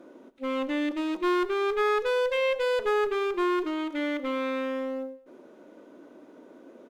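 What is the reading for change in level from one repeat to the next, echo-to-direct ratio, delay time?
−8.5 dB, −16.5 dB, 108 ms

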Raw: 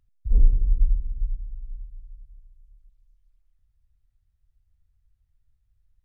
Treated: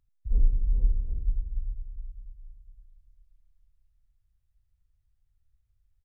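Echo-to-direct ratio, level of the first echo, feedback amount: −2.0 dB, −16.5 dB, repeats not evenly spaced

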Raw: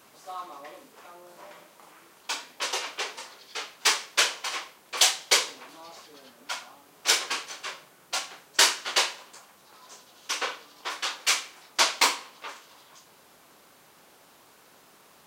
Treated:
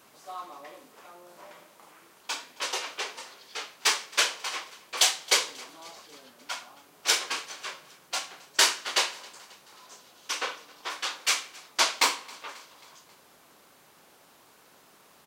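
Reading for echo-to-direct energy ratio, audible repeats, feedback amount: −22.0 dB, 3, 58%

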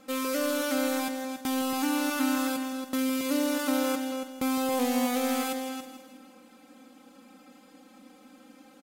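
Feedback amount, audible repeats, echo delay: 50%, 4, 162 ms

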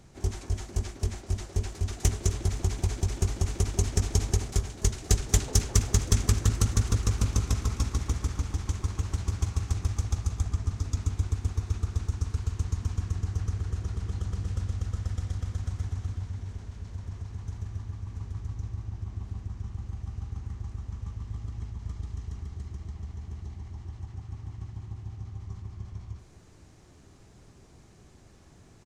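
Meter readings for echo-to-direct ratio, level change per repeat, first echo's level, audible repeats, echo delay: −19.0 dB, −7.0 dB, −20.0 dB, 2, 260 ms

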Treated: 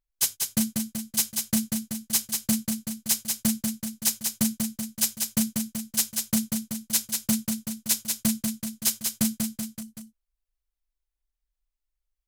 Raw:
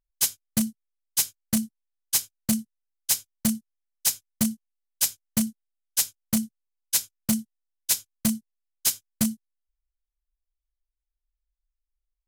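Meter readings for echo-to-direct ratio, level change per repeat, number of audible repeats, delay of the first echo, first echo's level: −2.5 dB, −4.5 dB, 4, 190 ms, −4.5 dB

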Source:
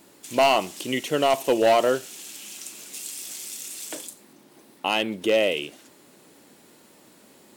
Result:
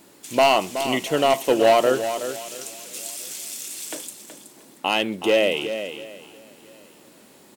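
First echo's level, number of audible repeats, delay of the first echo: −10.0 dB, 4, 373 ms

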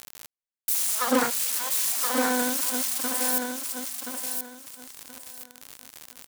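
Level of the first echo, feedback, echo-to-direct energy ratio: −5.0 dB, 25%, −4.5 dB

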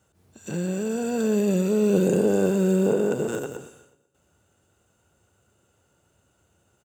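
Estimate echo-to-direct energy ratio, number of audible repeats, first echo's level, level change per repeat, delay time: −16.5 dB, 3, −18.0 dB, −5.5 dB, 122 ms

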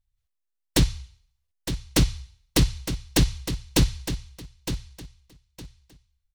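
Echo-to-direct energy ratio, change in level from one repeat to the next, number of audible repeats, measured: −10.0 dB, −13.0 dB, 2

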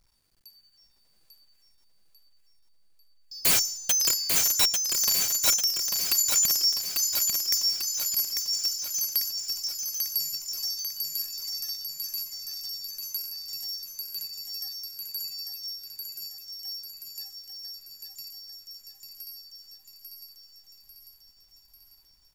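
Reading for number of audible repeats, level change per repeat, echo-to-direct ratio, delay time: 6, −5.0 dB, −2.5 dB, 845 ms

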